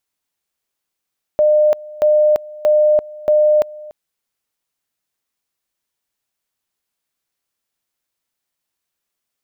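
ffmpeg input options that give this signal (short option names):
-f lavfi -i "aevalsrc='pow(10,(-9-21.5*gte(mod(t,0.63),0.34))/20)*sin(2*PI*605*t)':d=2.52:s=44100"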